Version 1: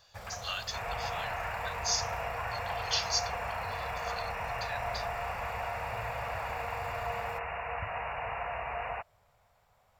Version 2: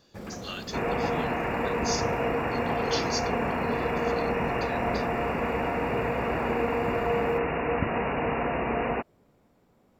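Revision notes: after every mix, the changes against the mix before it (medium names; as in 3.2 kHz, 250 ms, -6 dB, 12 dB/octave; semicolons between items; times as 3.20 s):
second sound +7.5 dB; master: remove FFT filter 100 Hz 0 dB, 290 Hz -28 dB, 670 Hz +2 dB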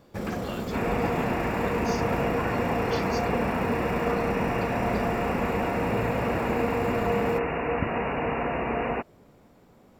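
speech: add tilt EQ -4 dB/octave; first sound +8.0 dB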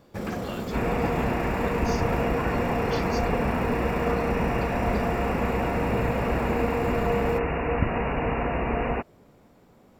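second sound: remove high-pass 170 Hz 6 dB/octave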